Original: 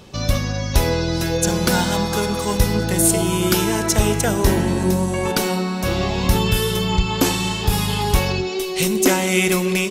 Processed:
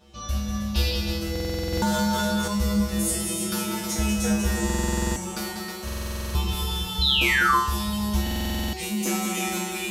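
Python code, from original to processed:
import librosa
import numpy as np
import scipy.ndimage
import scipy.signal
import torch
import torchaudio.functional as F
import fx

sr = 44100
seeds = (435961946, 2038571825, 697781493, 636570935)

y = x + 10.0 ** (-6.0 / 20.0) * np.pad(x, (int(317 * sr / 1000.0), 0))[:len(x)]
y = fx.spec_paint(y, sr, seeds[0], shape='noise', start_s=0.74, length_s=0.21, low_hz=2300.0, high_hz=5400.0, level_db=-20.0)
y = fx.peak_eq(y, sr, hz=7200.0, db=13.5, octaves=0.59, at=(4.54, 5.18))
y = y + 10.0 ** (-6.0 / 20.0) * np.pad(y, (int(193 * sr / 1000.0), 0))[:len(y)]
y = fx.spec_paint(y, sr, seeds[1], shape='fall', start_s=7.01, length_s=0.55, low_hz=990.0, high_hz=4200.0, level_db=-8.0)
y = fx.comb_fb(y, sr, f0_hz=69.0, decay_s=0.59, harmonics='odd', damping=0.0, mix_pct=100)
y = fx.dynamic_eq(y, sr, hz=2400.0, q=1.0, threshold_db=-32.0, ratio=4.0, max_db=-5)
y = fx.buffer_glitch(y, sr, at_s=(1.31, 4.65, 5.84, 8.22), block=2048, repeats=10)
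y = fx.env_flatten(y, sr, amount_pct=50, at=(1.73, 2.48))
y = F.gain(torch.from_numpy(y), 4.5).numpy()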